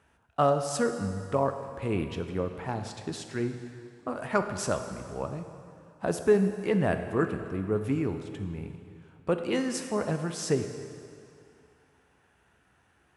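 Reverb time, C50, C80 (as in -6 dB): 2.4 s, 8.0 dB, 8.5 dB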